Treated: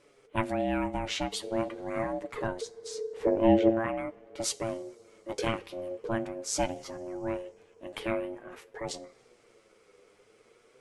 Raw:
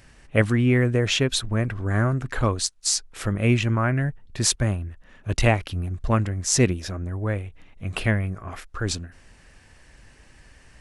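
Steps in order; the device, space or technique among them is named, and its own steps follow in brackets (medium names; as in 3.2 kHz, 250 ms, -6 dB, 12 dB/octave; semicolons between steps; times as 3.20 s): 2.61–3.70 s: RIAA curve playback; two-slope reverb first 0.33 s, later 3.4 s, from -18 dB, DRR 15.5 dB; alien voice (ring modulator 450 Hz; flange 0.45 Hz, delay 6.8 ms, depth 3.5 ms, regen +43%); trim -4 dB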